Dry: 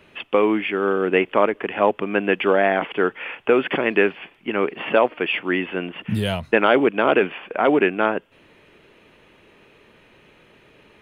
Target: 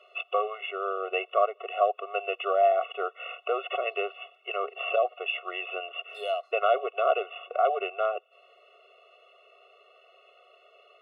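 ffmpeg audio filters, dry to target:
ffmpeg -i in.wav -filter_complex "[0:a]asettb=1/sr,asplit=3[link_01][link_02][link_03];[link_01]atrim=end=4.964[link_04];[link_02]atrim=start=4.96:end=5.36,asetpts=PTS-STARTPTS,afade=type=in:duration=0.004:curve=qsin,afade=type=out:start_time=0.396:duration=0.004:curve=qsin,adynamicequalizer=threshold=0.0355:dfrequency=1400:dqfactor=1:tfrequency=1400:tqfactor=1:attack=5:release=100:ratio=0.375:range=2.5:mode=cutabove:tftype=bell[link_05];[link_03]atrim=start=5.356[link_06];[link_04][link_05]acrossfade=duration=0.004:curve1=hsin:curve2=qsin[link_07];[link_07][link_06]acrossfade=duration=0.004:curve1=qsin:curve2=hsin,asplit=3[link_08][link_09][link_10];[link_08]bandpass=frequency=730:width_type=q:width=8,volume=0dB[link_11];[link_09]bandpass=frequency=1090:width_type=q:width=8,volume=-6dB[link_12];[link_10]bandpass=frequency=2440:width_type=q:width=8,volume=-9dB[link_13];[link_11][link_12][link_13]amix=inputs=3:normalize=0,asplit=2[link_14][link_15];[link_15]acompressor=threshold=-40dB:ratio=6,volume=2.5dB[link_16];[link_14][link_16]amix=inputs=2:normalize=0,highshelf=frequency=2000:gain=11.5,afftfilt=real='re*eq(mod(floor(b*sr/1024/370),2),1)':imag='im*eq(mod(floor(b*sr/1024/370),2),1)':win_size=1024:overlap=0.75" out.wav

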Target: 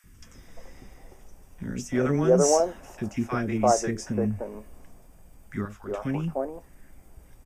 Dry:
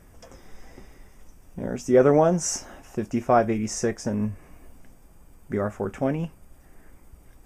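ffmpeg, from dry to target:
ffmpeg -i in.wav -filter_complex "[0:a]asettb=1/sr,asplit=3[link_01][link_02][link_03];[link_01]atrim=end=5.614[link_04];[link_02]atrim=start=5.61:end=6.01,asetpts=PTS-STARTPTS,afade=type=in:duration=0.004:curve=qsin,afade=type=out:start_time=0.396:duration=0.004:curve=qsin,equalizer=frequency=125:width_type=o:width=1:gain=-12,equalizer=frequency=250:width_type=o:width=1:gain=-9,equalizer=frequency=500:width_type=o:width=1:gain=-7,equalizer=frequency=1000:width_type=o:width=1:gain=4,equalizer=frequency=2000:width_type=o:width=1:gain=-7,equalizer=frequency=4000:width_type=o:width=1:gain=6,equalizer=frequency=8000:width_type=o:width=1:gain=-6[link_05];[link_03]atrim=start=6.006[link_06];[link_04][link_05]acrossfade=duration=0.004:curve1=hsin:curve2=qsin[link_07];[link_07][link_06]acrossfade=duration=0.004:curve1=qsin:curve2=hsin,acrossover=split=350|1200[link_08][link_09][link_10];[link_08]adelay=40[link_11];[link_09]adelay=340[link_12];[link_11][link_12][link_10]amix=inputs=3:normalize=0" out.wav

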